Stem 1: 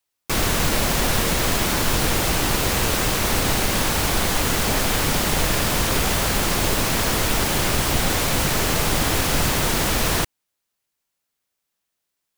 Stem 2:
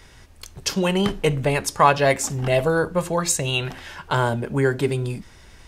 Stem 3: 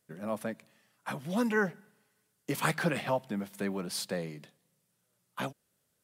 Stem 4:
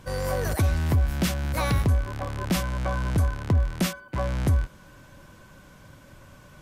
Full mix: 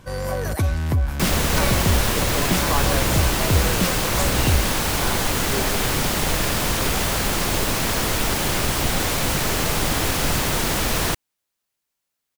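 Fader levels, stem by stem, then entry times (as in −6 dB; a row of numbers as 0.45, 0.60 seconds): −1.0, −10.5, −5.0, +1.5 decibels; 0.90, 0.90, 0.00, 0.00 seconds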